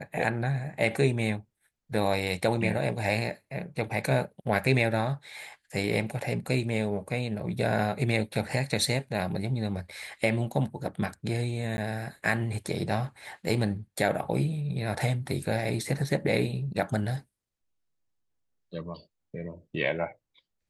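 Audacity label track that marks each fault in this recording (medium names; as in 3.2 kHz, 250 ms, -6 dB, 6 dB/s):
11.770000	11.780000	dropout 10 ms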